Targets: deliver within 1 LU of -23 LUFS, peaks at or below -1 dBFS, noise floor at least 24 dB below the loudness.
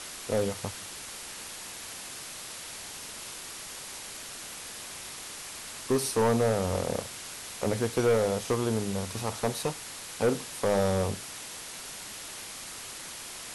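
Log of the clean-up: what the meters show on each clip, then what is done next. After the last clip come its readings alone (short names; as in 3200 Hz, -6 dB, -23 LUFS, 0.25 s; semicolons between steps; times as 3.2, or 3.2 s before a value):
clipped 0.7%; flat tops at -19.0 dBFS; noise floor -42 dBFS; noise floor target -56 dBFS; loudness -32.0 LUFS; peak -19.0 dBFS; loudness target -23.0 LUFS
-> clip repair -19 dBFS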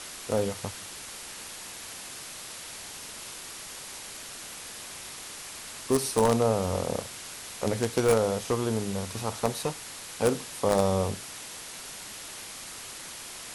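clipped 0.0%; noise floor -42 dBFS; noise floor target -55 dBFS
-> noise print and reduce 13 dB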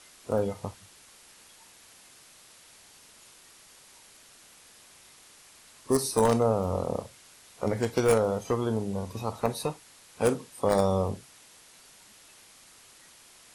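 noise floor -55 dBFS; loudness -28.0 LUFS; peak -10.0 dBFS; loudness target -23.0 LUFS
-> gain +5 dB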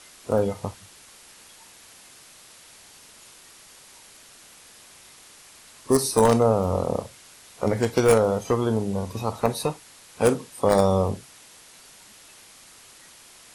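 loudness -23.0 LUFS; peak -5.0 dBFS; noise floor -50 dBFS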